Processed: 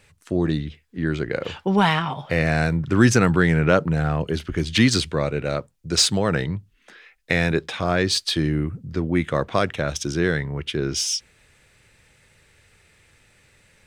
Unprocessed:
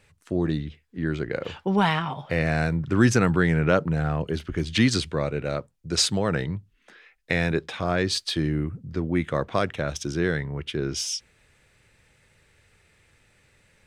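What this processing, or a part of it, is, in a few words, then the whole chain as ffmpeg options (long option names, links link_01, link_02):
exciter from parts: -filter_complex "[0:a]asplit=2[link_01][link_02];[link_02]highpass=frequency=3100:poles=1,asoftclip=type=tanh:threshold=-26dB,volume=-7dB[link_03];[link_01][link_03]amix=inputs=2:normalize=0,volume=3dB"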